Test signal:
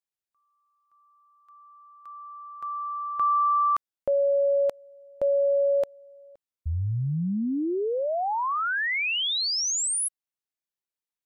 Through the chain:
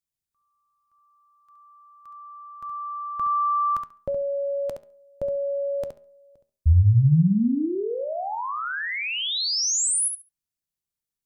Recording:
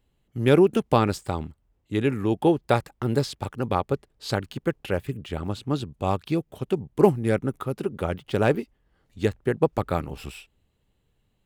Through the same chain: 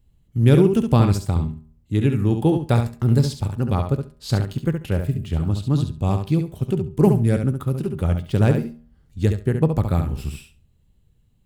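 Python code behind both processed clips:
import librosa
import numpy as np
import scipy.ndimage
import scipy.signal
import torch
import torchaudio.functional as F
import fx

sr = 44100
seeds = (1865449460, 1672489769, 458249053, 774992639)

y = fx.bass_treble(x, sr, bass_db=15, treble_db=7)
y = fx.comb_fb(y, sr, f0_hz=78.0, decay_s=0.55, harmonics='all', damping=0.4, mix_pct=50)
y = fx.echo_feedback(y, sr, ms=69, feedback_pct=16, wet_db=-7.0)
y = y * 10.0 ** (1.0 / 20.0)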